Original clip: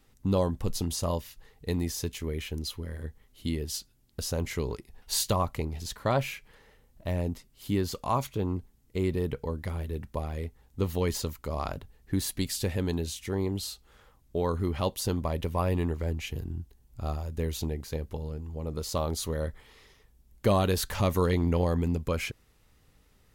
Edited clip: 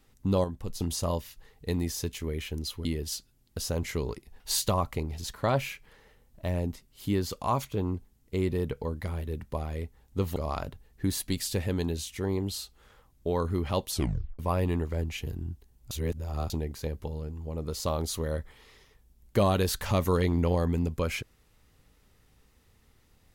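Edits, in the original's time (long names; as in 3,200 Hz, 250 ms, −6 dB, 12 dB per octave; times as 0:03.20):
0:00.44–0:00.80: clip gain −6 dB
0:02.85–0:03.47: remove
0:10.98–0:11.45: remove
0:14.99: tape stop 0.49 s
0:17.00–0:17.59: reverse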